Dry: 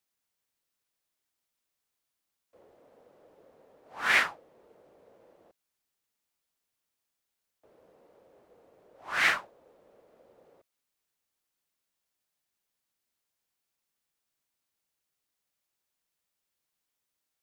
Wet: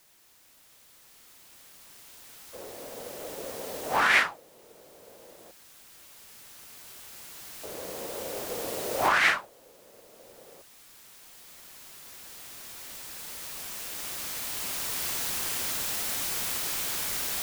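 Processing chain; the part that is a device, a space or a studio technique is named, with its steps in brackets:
cheap recorder with automatic gain (white noise bed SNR 23 dB; camcorder AGC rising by 5.2 dB per second)
level +2 dB

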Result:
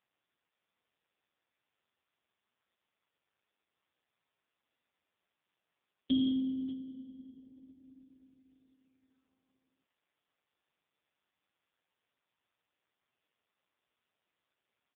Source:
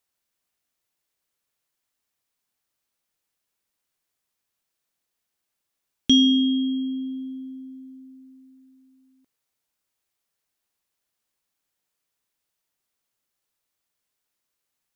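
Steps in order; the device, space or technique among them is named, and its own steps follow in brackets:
0:06.24–0:06.79: dynamic equaliser 1,600 Hz, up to −3 dB, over −45 dBFS, Q 2.9
satellite phone (band-pass filter 350–3,200 Hz; single-tap delay 594 ms −17 dB; level −4.5 dB; AMR narrowband 5.15 kbit/s 8,000 Hz)

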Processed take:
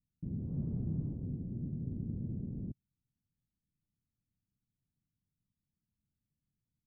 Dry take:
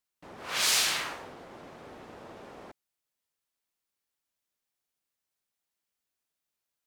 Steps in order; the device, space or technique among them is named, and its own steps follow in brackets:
the neighbour's flat through the wall (low-pass filter 210 Hz 24 dB per octave; parametric band 120 Hz +5 dB 1 octave)
level +16.5 dB

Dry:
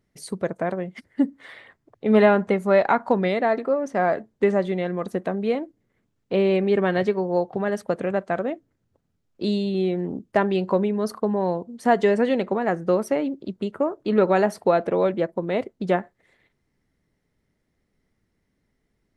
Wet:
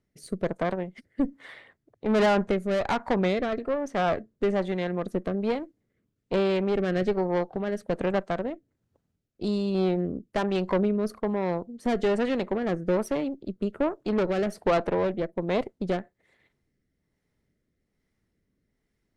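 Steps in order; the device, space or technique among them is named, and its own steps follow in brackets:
overdriven rotary cabinet (tube saturation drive 20 dB, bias 0.75; rotating-speaker cabinet horn 1.2 Hz)
level +2.5 dB

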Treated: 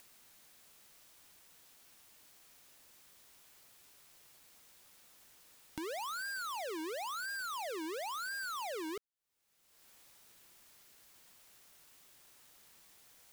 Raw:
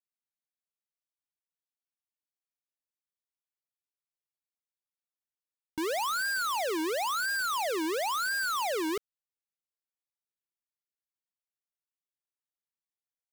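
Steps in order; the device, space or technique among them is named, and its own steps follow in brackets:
upward and downward compression (upward compression, threshold −44 dBFS; downward compressor 4 to 1, threshold −50 dBFS, peak gain reduction 14.5 dB)
level +5 dB

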